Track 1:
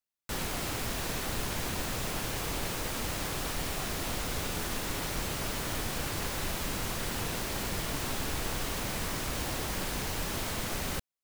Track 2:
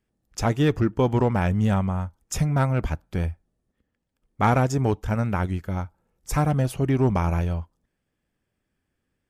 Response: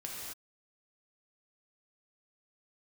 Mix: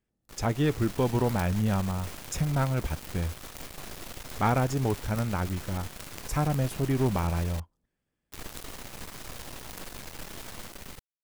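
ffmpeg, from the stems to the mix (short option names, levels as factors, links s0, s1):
-filter_complex "[0:a]dynaudnorm=f=190:g=7:m=2,acrusher=bits=4:dc=4:mix=0:aa=0.000001,volume=0.299,asplit=3[s0][s1][s2];[s0]atrim=end=7.6,asetpts=PTS-STARTPTS,afade=t=out:st=7.596:d=0.004:c=hsin[s3];[s1]atrim=start=7.6:end=8.32,asetpts=PTS-STARTPTS,volume=0[s4];[s2]atrim=start=8.32,asetpts=PTS-STARTPTS,afade=t=in:d=0.004:c=hsin[s5];[s3][s4][s5]concat=n=3:v=0:a=1[s6];[1:a]volume=0.562[s7];[s6][s7]amix=inputs=2:normalize=0"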